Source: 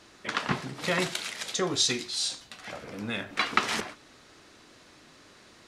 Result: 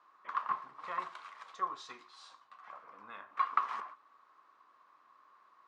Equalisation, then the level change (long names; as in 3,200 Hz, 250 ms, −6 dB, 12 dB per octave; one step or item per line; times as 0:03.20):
resonant band-pass 1,100 Hz, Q 11
+5.5 dB